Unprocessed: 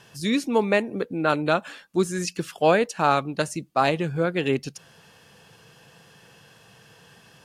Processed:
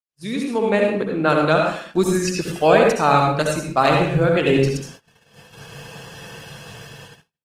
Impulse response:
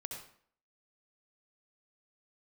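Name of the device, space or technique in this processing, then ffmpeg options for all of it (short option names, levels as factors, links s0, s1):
speakerphone in a meeting room: -filter_complex "[1:a]atrim=start_sample=2205[s0];[0:a][s0]afir=irnorm=-1:irlink=0,asplit=2[s1][s2];[s2]adelay=120,highpass=300,lowpass=3400,asoftclip=type=hard:threshold=0.126,volume=0.0708[s3];[s1][s3]amix=inputs=2:normalize=0,dynaudnorm=f=320:g=5:m=6.31,agate=range=0.00398:threshold=0.0112:ratio=16:detection=peak" -ar 48000 -c:a libopus -b:a 20k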